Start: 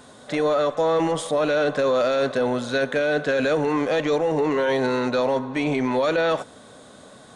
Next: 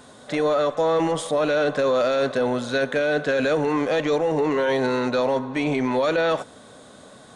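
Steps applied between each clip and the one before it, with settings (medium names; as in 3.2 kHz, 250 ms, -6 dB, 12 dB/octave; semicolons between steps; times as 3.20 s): no audible change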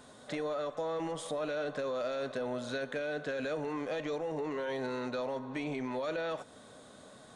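compression 2.5:1, threshold -28 dBFS, peak gain reduction 7.5 dB; feedback comb 620 Hz, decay 0.53 s, mix 60%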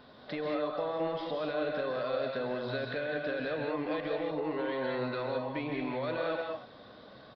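resampled via 11.025 kHz; on a send at -1 dB: reverberation, pre-delay 125 ms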